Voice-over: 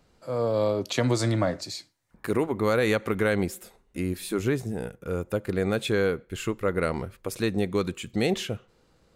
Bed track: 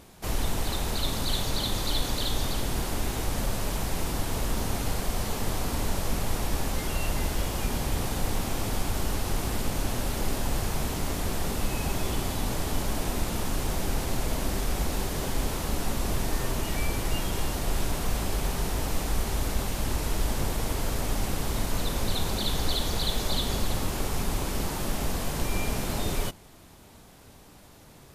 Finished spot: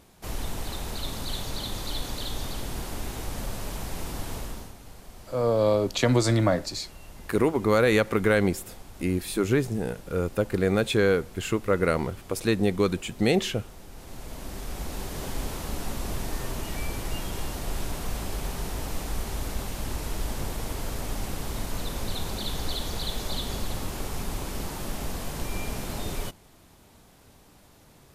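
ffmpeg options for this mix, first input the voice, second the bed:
-filter_complex "[0:a]adelay=5050,volume=2.5dB[a];[1:a]volume=9.5dB,afade=t=out:st=4.32:d=0.42:silence=0.223872,afade=t=in:st=13.9:d=1.38:silence=0.199526[b];[a][b]amix=inputs=2:normalize=0"

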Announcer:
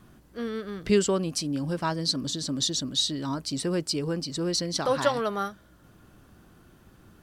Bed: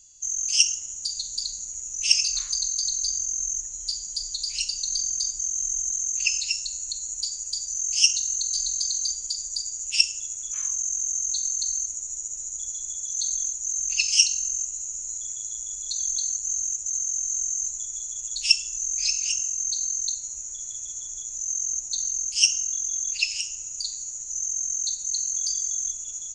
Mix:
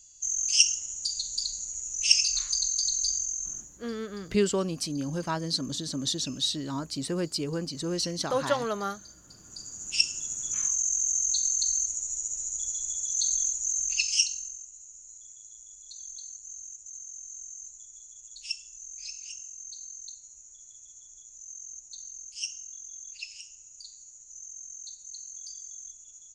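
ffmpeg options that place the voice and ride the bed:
-filter_complex "[0:a]adelay=3450,volume=-2.5dB[a];[1:a]volume=22dB,afade=t=out:st=3.11:d=0.68:silence=0.0794328,afade=t=in:st=9.41:d=1.04:silence=0.0668344,afade=t=out:st=13.58:d=1.02:silence=0.16788[b];[a][b]amix=inputs=2:normalize=0"

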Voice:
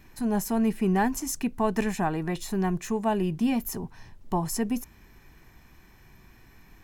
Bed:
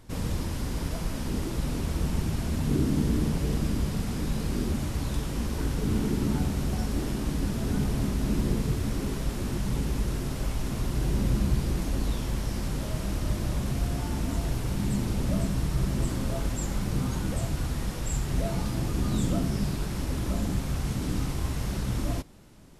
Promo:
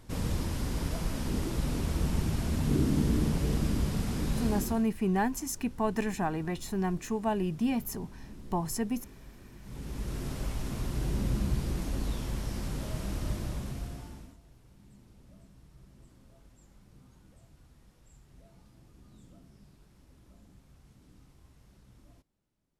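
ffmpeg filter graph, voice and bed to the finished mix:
-filter_complex "[0:a]adelay=4200,volume=-4dB[a];[1:a]volume=15.5dB,afade=t=out:st=4.46:d=0.41:silence=0.1,afade=t=in:st=9.61:d=0.66:silence=0.141254,afade=t=out:st=13.27:d=1.1:silence=0.0595662[b];[a][b]amix=inputs=2:normalize=0"

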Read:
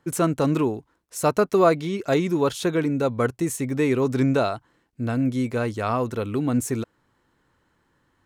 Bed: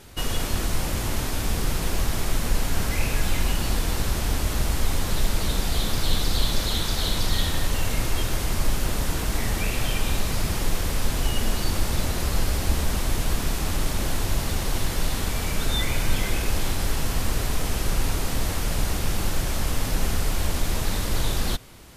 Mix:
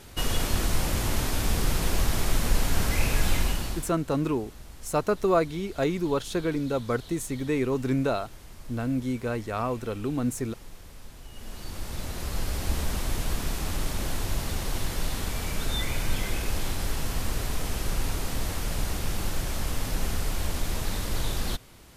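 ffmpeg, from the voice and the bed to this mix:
-filter_complex "[0:a]adelay=3700,volume=-5dB[a];[1:a]volume=16.5dB,afade=t=out:st=3.33:d=0.6:silence=0.0891251,afade=t=in:st=11.29:d=1.49:silence=0.141254[b];[a][b]amix=inputs=2:normalize=0"

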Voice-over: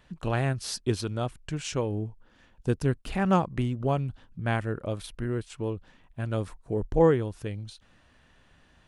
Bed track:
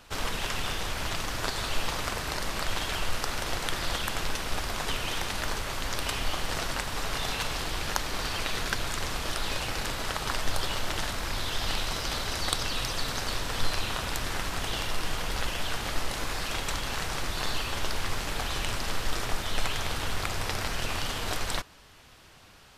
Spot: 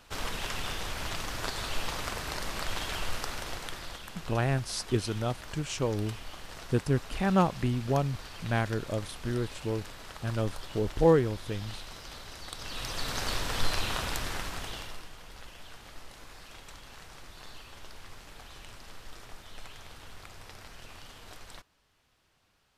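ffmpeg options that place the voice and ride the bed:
-filter_complex "[0:a]adelay=4050,volume=-1dB[a];[1:a]volume=9.5dB,afade=t=out:st=3.12:d=0.89:silence=0.316228,afade=t=in:st=12.53:d=0.73:silence=0.223872,afade=t=out:st=13.98:d=1.11:silence=0.149624[b];[a][b]amix=inputs=2:normalize=0"

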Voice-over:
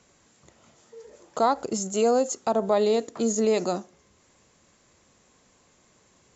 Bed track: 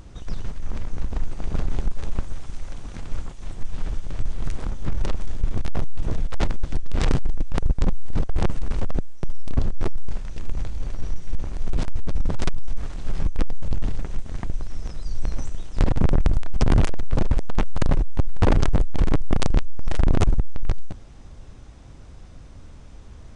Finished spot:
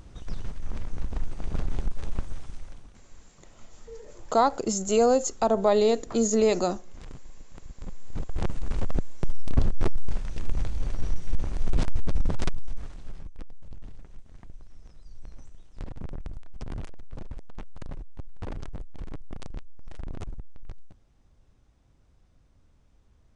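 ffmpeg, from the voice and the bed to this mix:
-filter_complex "[0:a]adelay=2950,volume=1dB[a];[1:a]volume=18dB,afade=t=out:st=2.38:d=0.64:silence=0.11885,afade=t=in:st=7.76:d=1.48:silence=0.0749894,afade=t=out:st=12.01:d=1.23:silence=0.125893[b];[a][b]amix=inputs=2:normalize=0"

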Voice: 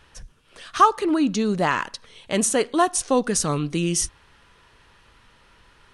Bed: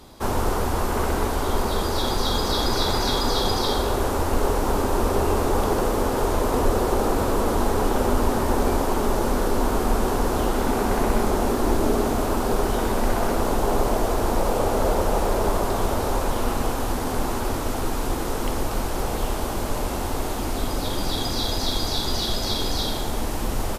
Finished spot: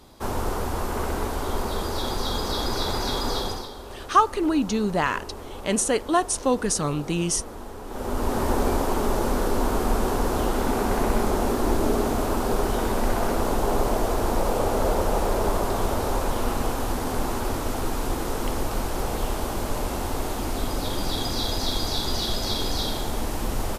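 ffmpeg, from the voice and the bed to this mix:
-filter_complex "[0:a]adelay=3350,volume=-2dB[a];[1:a]volume=11dB,afade=t=out:st=3.35:d=0.35:silence=0.237137,afade=t=in:st=7.86:d=0.58:silence=0.177828[b];[a][b]amix=inputs=2:normalize=0"

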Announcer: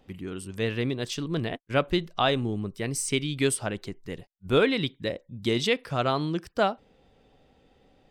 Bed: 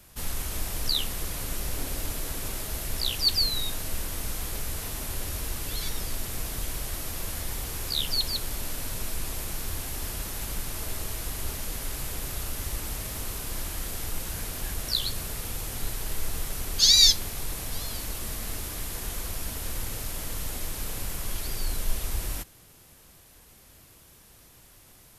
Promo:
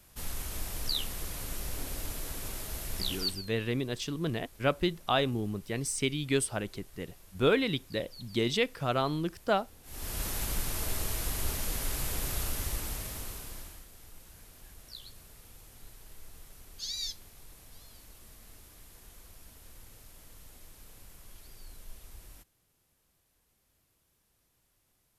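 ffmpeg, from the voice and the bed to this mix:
-filter_complex "[0:a]adelay=2900,volume=-3.5dB[a];[1:a]volume=17.5dB,afade=t=out:st=3.15:d=0.28:silence=0.133352,afade=t=in:st=9.83:d=0.42:silence=0.0707946,afade=t=out:st=12.41:d=1.45:silence=0.105925[b];[a][b]amix=inputs=2:normalize=0"

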